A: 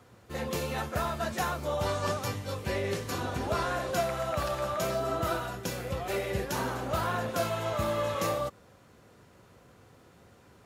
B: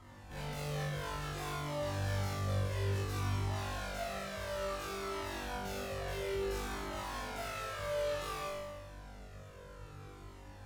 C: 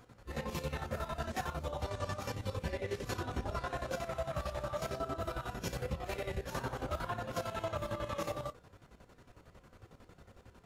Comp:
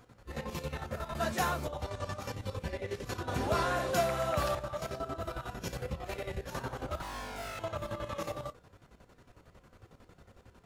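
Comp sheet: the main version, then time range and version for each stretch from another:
C
0:01.15–0:01.67: punch in from A
0:03.28–0:04.55: punch in from A
0:07.02–0:07.59: punch in from B

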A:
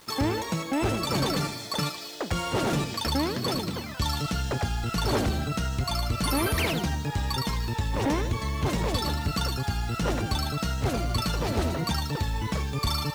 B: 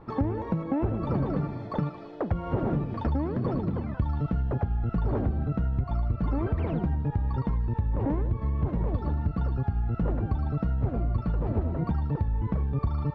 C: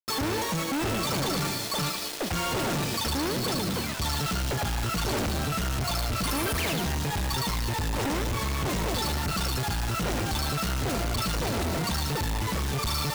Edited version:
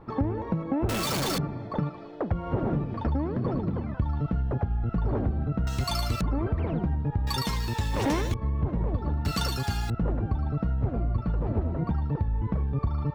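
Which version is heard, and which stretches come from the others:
B
0:00.89–0:01.38: punch in from C
0:05.67–0:06.21: punch in from A
0:07.27–0:08.34: punch in from A
0:09.25–0:09.90: punch in from A

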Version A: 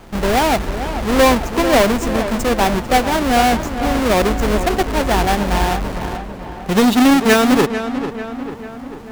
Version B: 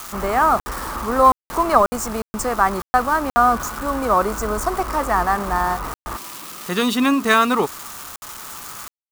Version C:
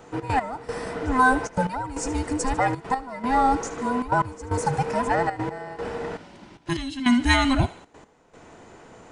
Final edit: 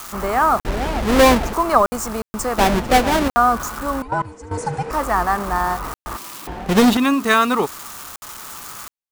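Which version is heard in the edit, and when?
B
0:00.65–0:01.53: punch in from A
0:02.58–0:03.28: punch in from A
0:04.02–0:04.91: punch in from C
0:06.47–0:06.97: punch in from A

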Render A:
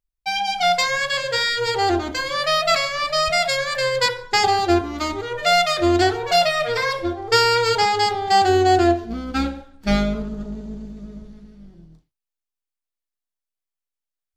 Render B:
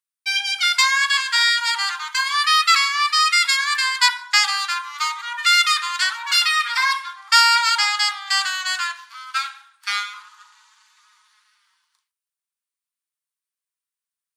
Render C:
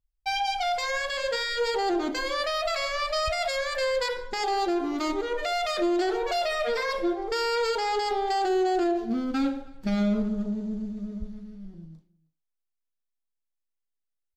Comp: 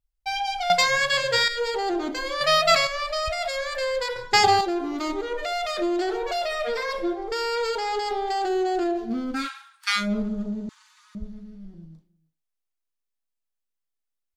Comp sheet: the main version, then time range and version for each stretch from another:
C
0:00.70–0:01.48: punch in from A
0:02.41–0:02.87: punch in from A
0:04.16–0:04.61: punch in from A
0:09.41–0:10.03: punch in from B, crossfade 0.16 s
0:10.69–0:11.15: punch in from B

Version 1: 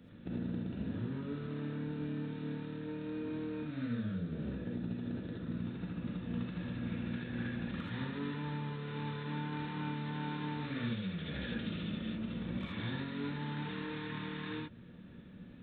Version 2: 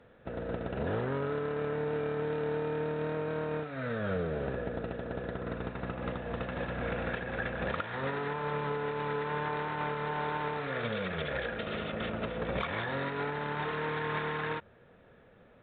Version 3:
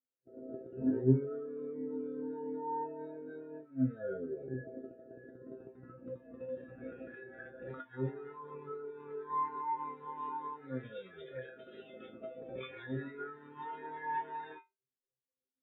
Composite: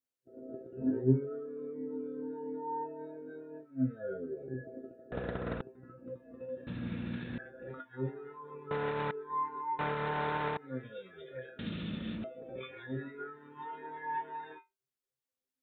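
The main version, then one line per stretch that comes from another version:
3
0:05.12–0:05.61: punch in from 2
0:06.67–0:07.38: punch in from 1
0:08.71–0:09.11: punch in from 2
0:09.79–0:10.57: punch in from 2
0:11.59–0:12.24: punch in from 1

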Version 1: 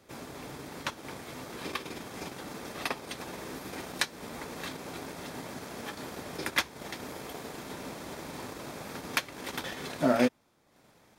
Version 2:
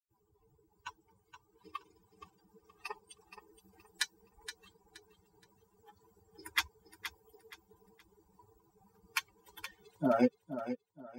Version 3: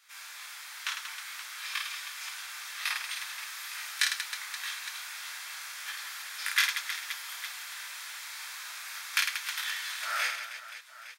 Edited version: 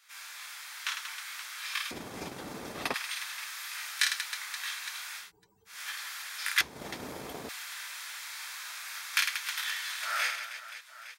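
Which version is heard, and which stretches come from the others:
3
0:01.91–0:02.94: punch in from 1
0:05.24–0:05.73: punch in from 2, crossfade 0.16 s
0:06.61–0:07.49: punch in from 1

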